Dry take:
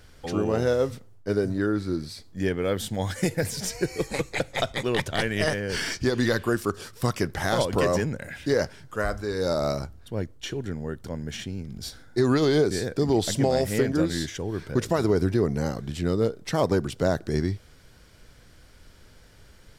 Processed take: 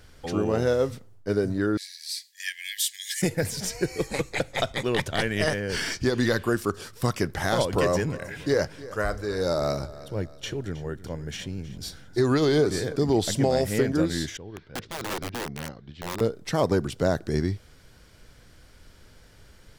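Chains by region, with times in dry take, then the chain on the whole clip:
1.77–3.22 brick-wall FIR high-pass 1600 Hz + high shelf 3000 Hz +11.5 dB
7.69–12.96 notch 230 Hz, Q 6.8 + feedback echo 0.317 s, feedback 42%, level -17.5 dB
14.37–16.21 ladder low-pass 4900 Hz, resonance 30% + wrapped overs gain 25 dB + upward expander, over -42 dBFS
whole clip: dry

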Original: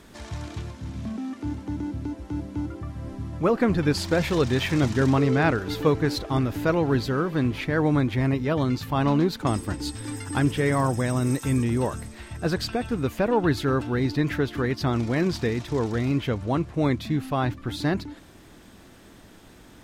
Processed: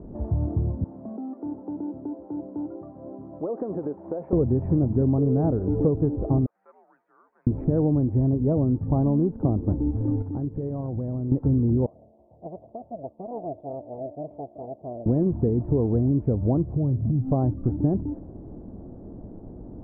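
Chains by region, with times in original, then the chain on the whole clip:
0.84–4.33 HPF 510 Hz + compressor 12:1, threshold -31 dBFS
6.46–7.47 ladder high-pass 1700 Hz, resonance 40% + frequency shift -100 Hz
10.22–11.32 gate -21 dBFS, range -8 dB + compressor 12:1, threshold -34 dBFS
11.86–15.06 minimum comb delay 0.84 ms + double band-pass 1500 Hz, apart 2.4 oct
16.73–17.3 bell 120 Hz +14.5 dB 0.76 oct + compressor, threshold -30 dBFS + de-hum 82.49 Hz, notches 11
whole clip: inverse Chebyshev low-pass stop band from 4100 Hz, stop band 80 dB; low shelf 440 Hz +6 dB; compressor, threshold -24 dBFS; gain +5.5 dB

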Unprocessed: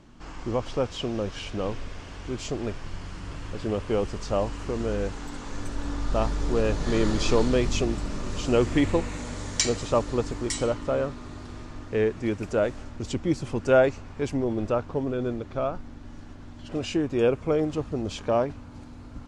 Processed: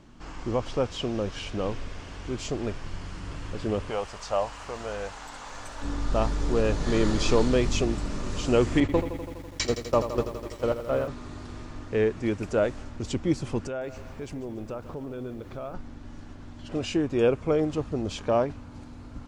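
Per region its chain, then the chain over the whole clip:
3.89–5.81 resonant low shelf 480 Hz -11 dB, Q 1.5 + crackle 360/s -58 dBFS
8.8–11.08 gate -26 dBFS, range -16 dB + air absorption 97 m + lo-fi delay 83 ms, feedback 80%, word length 8-bit, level -10.5 dB
13.67–15.74 compressor 3:1, threshold -35 dBFS + lo-fi delay 0.143 s, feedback 55%, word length 9-bit, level -13 dB
whole clip: dry

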